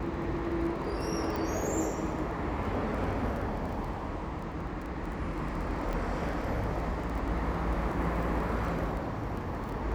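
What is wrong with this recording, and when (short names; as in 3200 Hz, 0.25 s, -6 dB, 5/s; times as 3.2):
crackle 16/s -36 dBFS
1.36 pop
5.93 gap 3.9 ms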